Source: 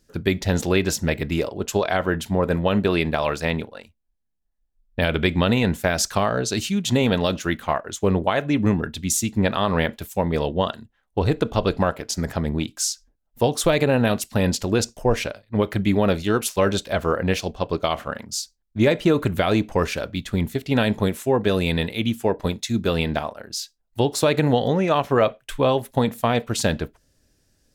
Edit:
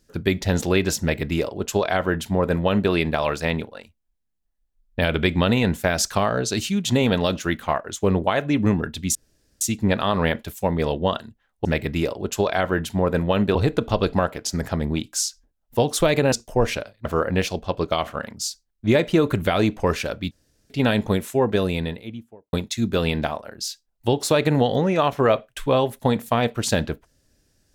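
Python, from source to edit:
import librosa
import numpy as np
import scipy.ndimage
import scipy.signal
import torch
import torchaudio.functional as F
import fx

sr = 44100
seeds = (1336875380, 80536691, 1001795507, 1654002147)

y = fx.studio_fade_out(x, sr, start_s=21.32, length_s=1.13)
y = fx.edit(y, sr, fx.duplicate(start_s=1.01, length_s=1.9, to_s=11.19),
    fx.insert_room_tone(at_s=9.15, length_s=0.46),
    fx.cut(start_s=13.96, length_s=0.85),
    fx.cut(start_s=15.54, length_s=1.43),
    fx.room_tone_fill(start_s=20.23, length_s=0.39), tone=tone)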